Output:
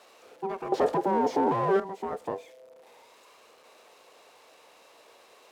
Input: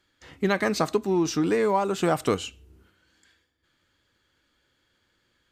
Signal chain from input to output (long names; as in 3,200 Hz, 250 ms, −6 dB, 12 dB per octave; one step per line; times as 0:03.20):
spike at every zero crossing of −19.5 dBFS
0:00.72–0:01.80: leveller curve on the samples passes 5
ring modulation 580 Hz
resonant band-pass 500 Hz, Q 4.3
level +6 dB